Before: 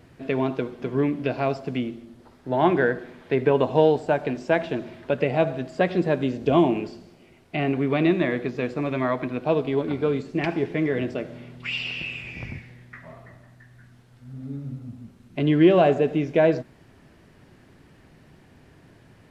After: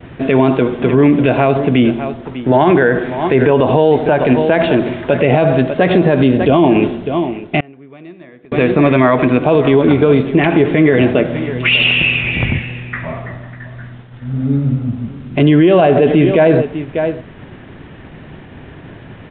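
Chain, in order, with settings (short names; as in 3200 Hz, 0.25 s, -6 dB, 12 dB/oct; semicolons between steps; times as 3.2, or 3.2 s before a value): expander -50 dBFS; on a send: echo 0.596 s -17.5 dB; 7.6–8.52 on the sum: flipped gate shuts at -20 dBFS, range -34 dB; downsampling 8000 Hz; maximiser +20 dB; gain -1 dB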